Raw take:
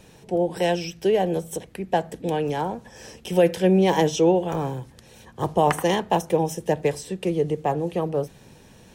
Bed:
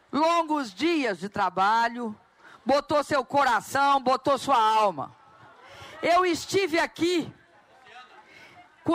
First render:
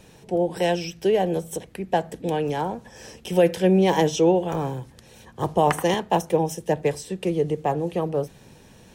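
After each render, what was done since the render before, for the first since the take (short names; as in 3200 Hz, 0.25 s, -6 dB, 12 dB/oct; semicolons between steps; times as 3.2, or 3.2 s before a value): 5.94–7.1 three-band expander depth 40%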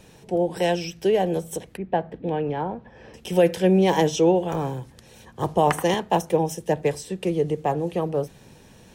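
1.77–3.14 air absorption 390 m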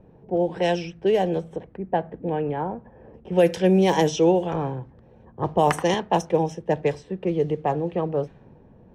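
low-pass opened by the level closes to 710 Hz, open at -14 dBFS; dynamic EQ 5700 Hz, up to +4 dB, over -57 dBFS, Q 5.3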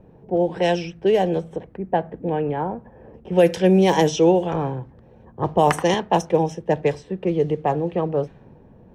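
gain +2.5 dB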